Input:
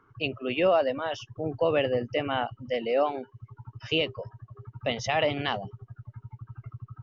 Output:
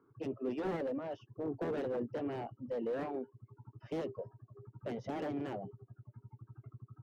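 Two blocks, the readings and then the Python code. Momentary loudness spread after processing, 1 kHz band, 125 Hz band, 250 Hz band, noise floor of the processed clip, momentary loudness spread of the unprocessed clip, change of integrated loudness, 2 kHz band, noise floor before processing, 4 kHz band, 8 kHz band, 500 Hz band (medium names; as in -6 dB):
18 LU, -14.0 dB, -10.0 dB, -5.0 dB, -73 dBFS, 20 LU, -11.5 dB, -18.5 dB, -65 dBFS, -26.0 dB, no reading, -11.5 dB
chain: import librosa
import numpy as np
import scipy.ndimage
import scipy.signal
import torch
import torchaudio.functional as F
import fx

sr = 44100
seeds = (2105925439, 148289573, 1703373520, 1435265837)

y = fx.cheby_harmonics(x, sr, harmonics=(3, 7, 8), levels_db=(-7, -26, -37), full_scale_db=-11.5)
y = fx.bandpass_q(y, sr, hz=320.0, q=1.2)
y = fx.slew_limit(y, sr, full_power_hz=8.9)
y = y * 10.0 ** (3.0 / 20.0)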